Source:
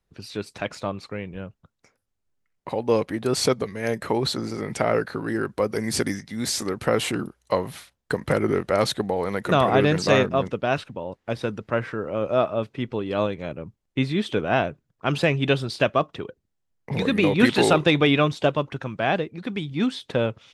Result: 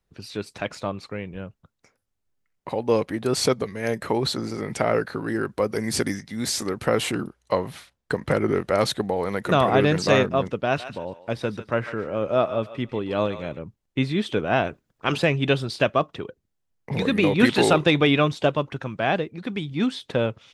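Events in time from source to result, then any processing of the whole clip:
7.23–8.56 s: treble shelf 9.5 kHz -8.5 dB
10.65–13.59 s: thinning echo 145 ms, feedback 24%, high-pass 930 Hz, level -10 dB
14.65–15.16 s: spectral peaks clipped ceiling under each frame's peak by 12 dB

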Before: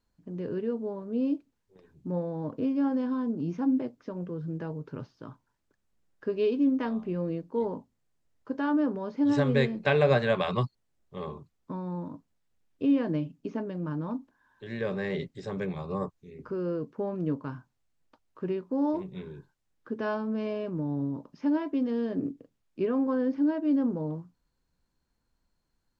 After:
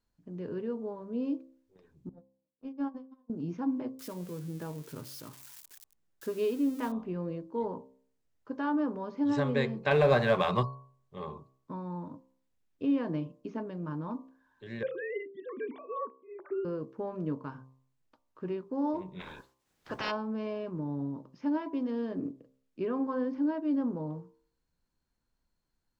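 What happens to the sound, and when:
2.09–3.30 s: gate -26 dBFS, range -58 dB
3.99–6.92 s: zero-crossing glitches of -34 dBFS
9.91–10.63 s: waveshaping leveller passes 1
14.83–16.65 s: formants replaced by sine waves
19.19–20.10 s: spectral peaks clipped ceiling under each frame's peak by 30 dB
whole clip: de-hum 65.66 Hz, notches 18; dynamic bell 1 kHz, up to +5 dB, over -49 dBFS, Q 2.1; trim -4 dB

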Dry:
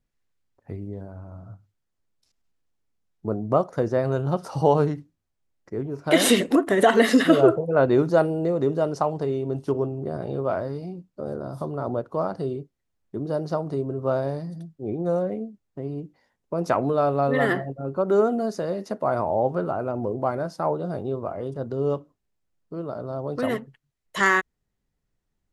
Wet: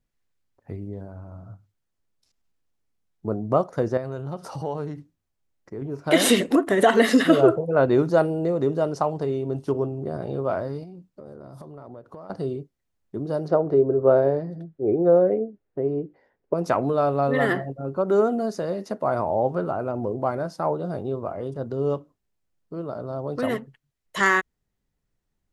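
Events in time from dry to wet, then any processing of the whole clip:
3.97–5.82 s: compression 2:1, threshold -33 dBFS
10.83–12.30 s: compression, threshold -38 dBFS
13.48–16.54 s: FFT filter 230 Hz 0 dB, 410 Hz +11 dB, 1.1 kHz 0 dB, 1.6 kHz +4 dB, 11 kHz -21 dB

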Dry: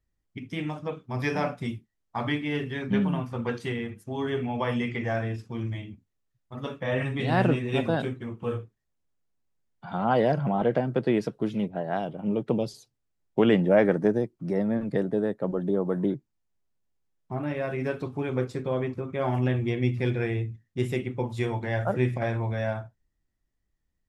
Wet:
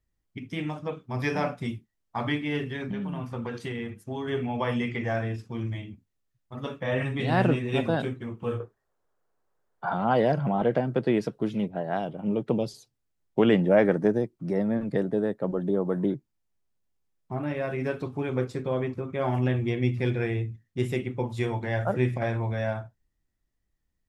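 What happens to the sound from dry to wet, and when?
2.65–4.28 s: compression 12:1, threshold -28 dBFS
8.60–9.94 s: high-order bell 770 Hz +13.5 dB 2.5 oct

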